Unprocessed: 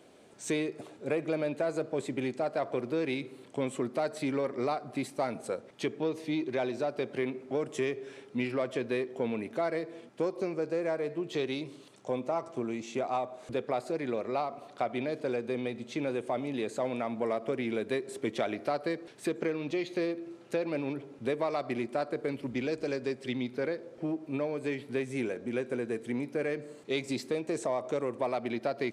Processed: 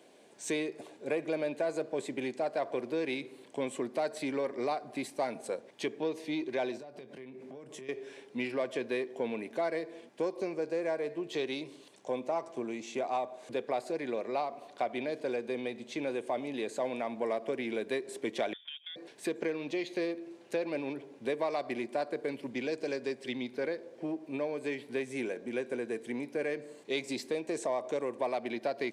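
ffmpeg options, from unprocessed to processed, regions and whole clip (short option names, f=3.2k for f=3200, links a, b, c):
-filter_complex "[0:a]asettb=1/sr,asplit=3[a][b][c];[a]atrim=end=6.774[d];[b]atrim=start=6.77:end=7.89,asetpts=PTS-STARTPTS,afade=t=in:d=0.004:c=qsin,afade=t=out:st=1.116:d=0.004:c=qsin,equalizer=f=140:w=1:g=9,acompressor=threshold=-41dB:ratio=12:attack=3.2:release=140:knee=1:detection=peak,asplit=2[e][f];[f]adelay=23,volume=-12dB[g];[e][g]amix=inputs=2:normalize=0,atrim=end_sample=49392[h];[c]atrim=start=7.886[i];[d][h]acrossfade=d=0.004:c1=hsin:c2=qsin[j];[j][i]acrossfade=d=0.004:c1=qsin:c2=hsin,asettb=1/sr,asplit=3[k][l][m];[k]atrim=end=18.534[n];[l]atrim=start=18.53:end=18.96,asetpts=PTS-STARTPTS,afade=t=in:d=0.004:c=qsin,afade=t=out:st=0.426:d=0.004:c=qsin,agate=range=-13dB:threshold=-34dB:ratio=16:release=100:detection=peak,lowpass=f=3.2k:t=q:w=0.5098,lowpass=f=3.2k:t=q:w=0.6013,lowpass=f=3.2k:t=q:w=0.9,lowpass=f=3.2k:t=q:w=2.563,afreqshift=-3800,acompressor=threshold=-43dB:ratio=4:attack=3.2:release=140:knee=1:detection=peak[o];[m]atrim=start=18.956[p];[n][o]acrossfade=d=0.004:c1=hsin:c2=qsin[q];[q][p]acrossfade=d=0.004:c1=qsin:c2=hsin,highpass=140,lowshelf=f=210:g=-8.5,bandreject=f=1.3k:w=5.6"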